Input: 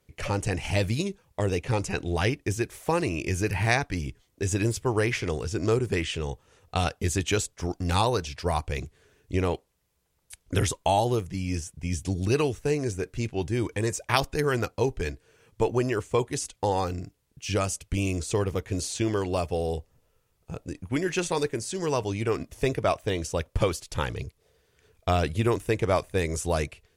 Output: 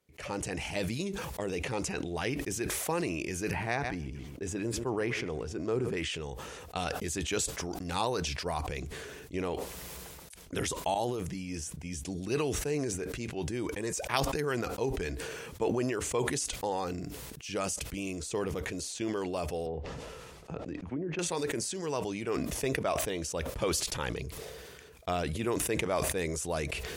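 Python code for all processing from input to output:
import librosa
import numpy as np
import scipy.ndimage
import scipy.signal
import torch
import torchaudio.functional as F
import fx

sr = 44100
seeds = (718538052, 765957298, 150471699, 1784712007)

y = fx.chain(x, sr, fx.high_shelf(hz=2600.0, db=-10.0),
    fx.echo_feedback(ms=130, feedback_pct=20, wet_db=-19), at=(3.51, 5.97))
y = fx.chain(y, sr, fx.peak_eq(hz=75.0, db=-3.5, octaves=0.34),
    fx.over_compress(threshold_db=-34.0, ratio=-1.0), at=(10.94, 11.34))
y = fx.chain(y, sr, fx.env_lowpass_down(base_hz=470.0, full_db=-22.5),
    fx.air_absorb(metres=50.0),
    fx.band_squash(depth_pct=70), at=(19.66, 21.19))
y = scipy.signal.sosfilt(scipy.signal.butter(2, 55.0, 'highpass', fs=sr, output='sos'), y)
y = fx.peak_eq(y, sr, hz=100.0, db=-15.0, octaves=0.4)
y = fx.sustainer(y, sr, db_per_s=24.0)
y = F.gain(torch.from_numpy(y), -7.0).numpy()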